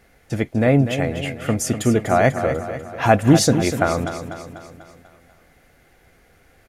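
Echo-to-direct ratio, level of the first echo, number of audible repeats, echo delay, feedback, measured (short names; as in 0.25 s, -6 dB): -8.5 dB, -10.0 dB, 5, 0.246 s, 53%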